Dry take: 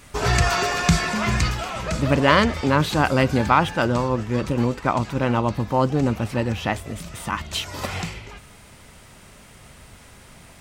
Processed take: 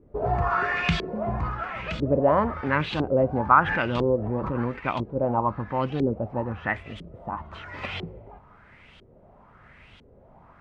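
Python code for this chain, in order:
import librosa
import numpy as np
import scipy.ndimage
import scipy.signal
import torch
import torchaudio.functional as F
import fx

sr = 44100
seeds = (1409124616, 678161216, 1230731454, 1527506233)

y = fx.filter_lfo_lowpass(x, sr, shape='saw_up', hz=1.0, low_hz=370.0, high_hz=3500.0, q=3.6)
y = fx.pre_swell(y, sr, db_per_s=31.0, at=(3.57, 4.83))
y = y * 10.0 ** (-7.5 / 20.0)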